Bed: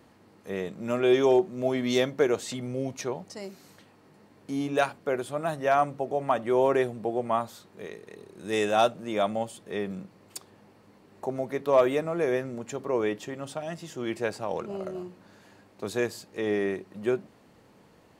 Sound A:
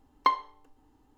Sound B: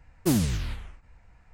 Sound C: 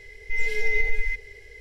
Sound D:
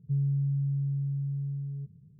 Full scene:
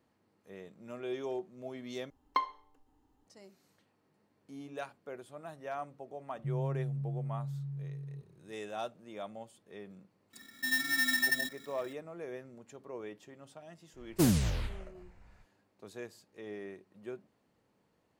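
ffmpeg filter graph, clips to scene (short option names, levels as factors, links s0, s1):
-filter_complex "[0:a]volume=0.15[s0];[3:a]aeval=exprs='val(0)*sgn(sin(2*PI*1800*n/s))':c=same[s1];[s0]asplit=2[s2][s3];[s2]atrim=end=2.104[s4];[1:a]atrim=end=1.17,asetpts=PTS-STARTPTS,volume=0.447[s5];[s3]atrim=start=3.266[s6];[4:a]atrim=end=2.19,asetpts=PTS-STARTPTS,volume=0.422,afade=t=in:d=0.004:c=hsin,afade=t=out:st=2.186:d=0.004:c=hsin,adelay=6350[s7];[s1]atrim=end=1.6,asetpts=PTS-STARTPTS,volume=0.266,afade=t=in:d=0.004:c=hsin,afade=t=out:st=1.596:d=0.004:c=hsin,adelay=10330[s8];[2:a]atrim=end=1.53,asetpts=PTS-STARTPTS,volume=0.708,afade=t=in:d=0.05,afade=t=out:st=1.48:d=0.05,adelay=13930[s9];[s4][s5]acrossfade=d=0.004:c1=hsin:c2=hsin[s10];[s10][s6]acrossfade=d=0.004:c1=hsin:c2=hsin[s11];[s11][s7][s8][s9]amix=inputs=4:normalize=0"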